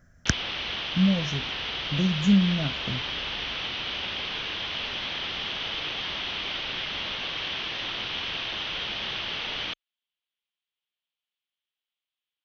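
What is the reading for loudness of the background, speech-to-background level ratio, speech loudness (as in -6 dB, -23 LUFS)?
-30.0 LUFS, 3.5 dB, -26.5 LUFS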